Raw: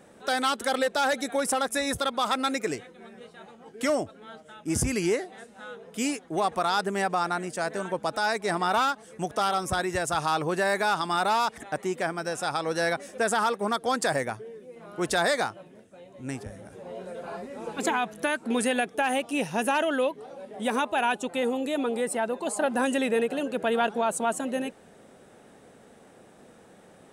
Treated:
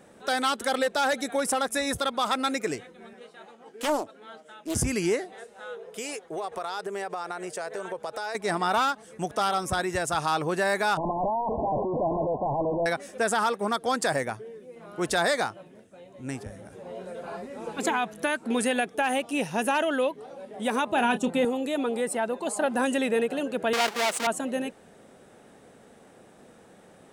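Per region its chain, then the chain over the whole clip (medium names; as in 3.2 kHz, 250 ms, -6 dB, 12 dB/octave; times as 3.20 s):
3.13–4.75 s: high-pass 270 Hz + loudspeaker Doppler distortion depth 0.46 ms
5.33–8.35 s: resonant low shelf 340 Hz -6 dB, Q 3 + compression 4:1, threshold -30 dBFS
10.97–12.86 s: one-bit comparator + brick-wall FIR low-pass 1.1 kHz + peaking EQ 650 Hz +8 dB 0.47 oct
20.87–21.45 s: peaking EQ 160 Hz +11.5 dB 1.8 oct + doubling 29 ms -10.5 dB
23.73–24.27 s: square wave that keeps the level + frequency weighting A + transformer saturation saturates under 2.5 kHz
whole clip: none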